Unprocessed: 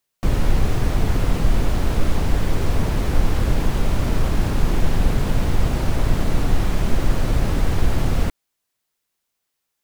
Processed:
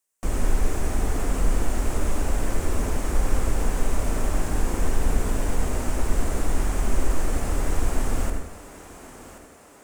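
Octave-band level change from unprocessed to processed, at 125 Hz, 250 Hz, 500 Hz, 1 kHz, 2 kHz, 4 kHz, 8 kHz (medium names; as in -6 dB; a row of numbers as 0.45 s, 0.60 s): -7.5 dB, -5.5 dB, -3.0 dB, -3.0 dB, -4.0 dB, -7.5 dB, +3.5 dB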